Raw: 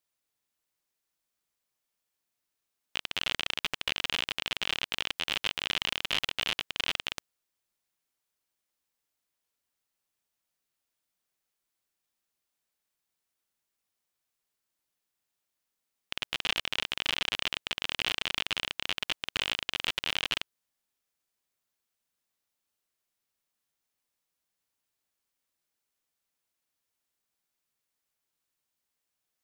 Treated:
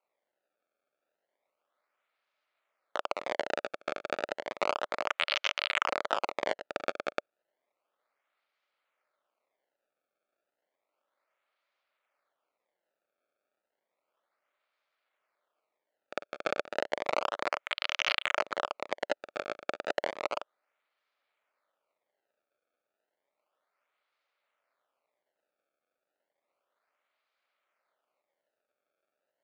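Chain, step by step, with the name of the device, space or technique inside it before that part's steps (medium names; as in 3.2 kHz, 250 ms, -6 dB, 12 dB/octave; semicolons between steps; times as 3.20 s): circuit-bent sampling toy (decimation with a swept rate 25×, swing 160% 0.32 Hz; cabinet simulation 560–6000 Hz, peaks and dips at 590 Hz +9 dB, 1.3 kHz +7 dB, 2.2 kHz +5 dB, 5.6 kHz -7 dB)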